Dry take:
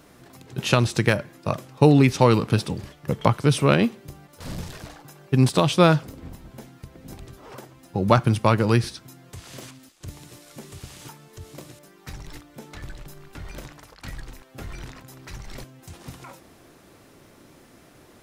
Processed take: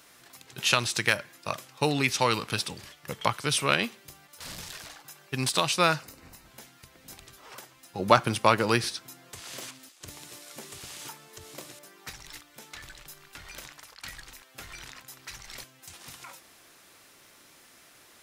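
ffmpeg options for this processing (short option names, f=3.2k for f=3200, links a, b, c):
-filter_complex "[0:a]asettb=1/sr,asplit=3[a][b][c];[a]atrim=end=5.634[d];[b]atrim=start=5.63:end=6.46,asetpts=PTS-STARTPTS,afade=t=in:d=0.004:c=qsin,afade=t=out:st=0.826:d=0.004:c=qsin,bandreject=f=3.3k:w=5.1[e];[c]atrim=start=6.456[f];[d][e]acrossfade=d=0.004:c1=hsin:c2=qsin[g];[g][f]acrossfade=d=0.004:c1=qsin:c2=hsin,asettb=1/sr,asplit=3[h][i][j];[h]atrim=end=7.994[k];[i]atrim=start=7.99:end=12.1,asetpts=PTS-STARTPTS,afade=t=in:d=0.004:c=qsin,afade=t=out:st=4.106:d=0.004:c=qsin,equalizer=f=390:t=o:w=3:g=7.5[l];[j]atrim=start=12.096[m];[k][l]acrossfade=d=0.004:c1=hsin:c2=qsin[n];[n][m]acrossfade=d=0.004:c1=qsin:c2=hsin,tiltshelf=f=790:g=-9.5,volume=-6dB"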